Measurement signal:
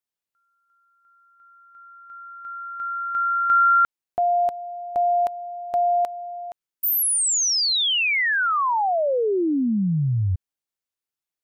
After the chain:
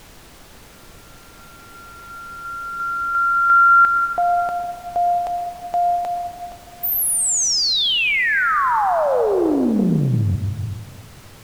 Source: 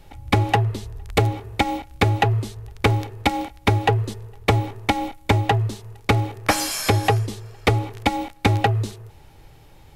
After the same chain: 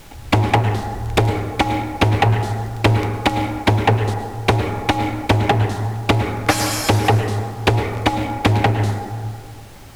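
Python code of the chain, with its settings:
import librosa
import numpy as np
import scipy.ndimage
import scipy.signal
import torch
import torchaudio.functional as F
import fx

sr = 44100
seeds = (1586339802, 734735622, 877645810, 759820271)

y = fx.rev_plate(x, sr, seeds[0], rt60_s=2.0, hf_ratio=0.25, predelay_ms=95, drr_db=5.5)
y = fx.dmg_noise_colour(y, sr, seeds[1], colour='pink', level_db=-46.0)
y = fx.doppler_dist(y, sr, depth_ms=0.45)
y = F.gain(torch.from_numpy(y), 2.5).numpy()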